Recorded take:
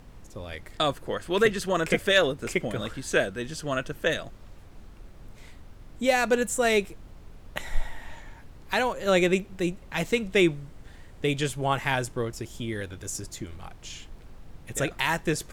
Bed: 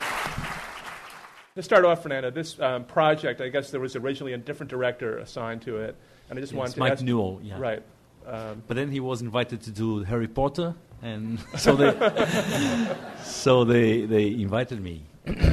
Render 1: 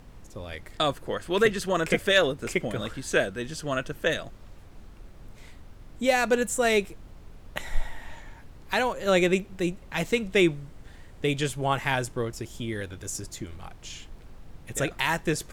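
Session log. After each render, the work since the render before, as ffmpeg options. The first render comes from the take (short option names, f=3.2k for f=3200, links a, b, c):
-af anull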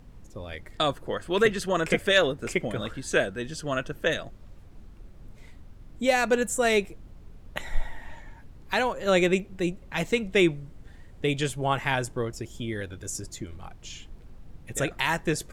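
-af "afftdn=nr=6:nf=-49"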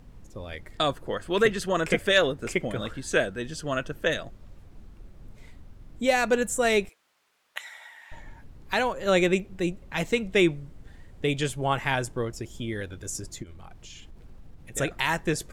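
-filter_complex "[0:a]asettb=1/sr,asplit=3[a][b][c];[a]atrim=end=6.894[d];[b]atrim=start=6.89:end=8.12,asetpts=PTS-STARTPTS,afade=t=in:d=0.004:c=qsin,afade=t=out:st=1.226:d=0.004:c=qsin,highpass=1.3k[e];[c]atrim=start=8.116[f];[d][e]acrossfade=d=0.004:c1=hsin:c2=qsin[g];[g][f]acrossfade=d=0.004:c1=qsin:c2=hsin,asplit=3[h][i][j];[h]afade=t=out:st=13.42:d=0.02[k];[i]acompressor=threshold=-40dB:ratio=6:attack=3.2:release=140:knee=1:detection=peak,afade=t=in:st=13.42:d=0.02,afade=t=out:st=14.72:d=0.02[l];[j]afade=t=in:st=14.72:d=0.02[m];[k][l][m]amix=inputs=3:normalize=0"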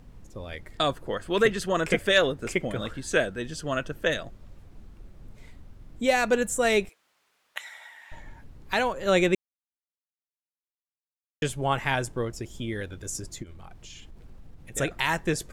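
-filter_complex "[0:a]asplit=3[a][b][c];[a]atrim=end=9.35,asetpts=PTS-STARTPTS,afade=t=out:st=9.346:d=0.004:c=hsin[d];[b]atrim=start=9.35:end=11.42,asetpts=PTS-STARTPTS,volume=0[e];[c]atrim=start=11.42,asetpts=PTS-STARTPTS,afade=t=in:d=0.004:c=hsin[f];[d][e][f]concat=n=3:v=0:a=1"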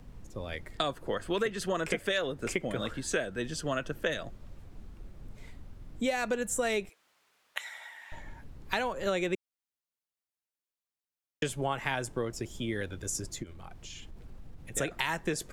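-filter_complex "[0:a]acrossover=split=170|1100|1800[a][b][c][d];[a]alimiter=level_in=10.5dB:limit=-24dB:level=0:latency=1:release=489,volume=-10.5dB[e];[e][b][c][d]amix=inputs=4:normalize=0,acompressor=threshold=-27dB:ratio=6"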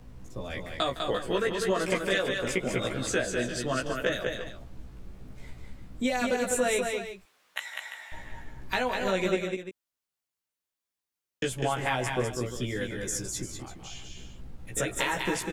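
-filter_complex "[0:a]asplit=2[a][b];[b]adelay=16,volume=-2dB[c];[a][c]amix=inputs=2:normalize=0,asplit=2[d][e];[e]aecho=0:1:160|200|345:0.141|0.596|0.251[f];[d][f]amix=inputs=2:normalize=0"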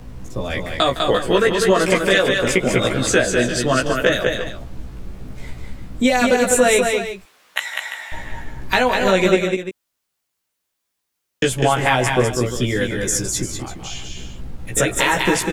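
-af "volume=12dB,alimiter=limit=-3dB:level=0:latency=1"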